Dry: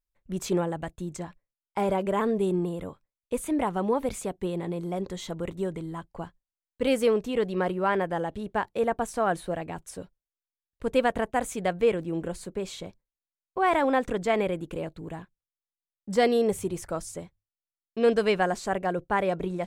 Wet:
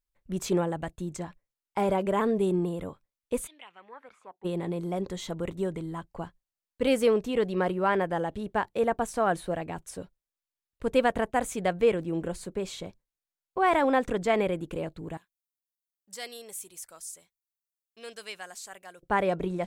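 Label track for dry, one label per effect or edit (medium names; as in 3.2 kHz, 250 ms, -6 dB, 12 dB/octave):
3.460000	4.440000	band-pass filter 3.8 kHz -> 800 Hz, Q 5.1
15.170000	19.030000	pre-emphasis filter coefficient 0.97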